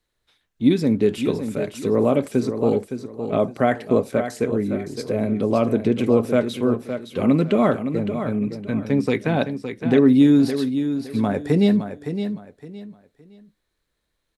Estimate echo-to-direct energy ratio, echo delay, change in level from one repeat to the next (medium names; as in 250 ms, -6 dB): -8.5 dB, 564 ms, -11.5 dB